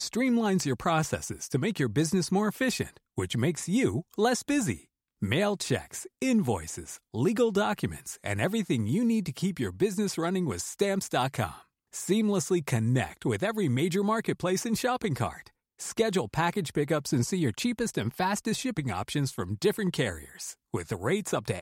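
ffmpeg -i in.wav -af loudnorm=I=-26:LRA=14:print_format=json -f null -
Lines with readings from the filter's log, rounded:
"input_i" : "-29.1",
"input_tp" : "-12.8",
"input_lra" : "2.8",
"input_thresh" : "-39.3",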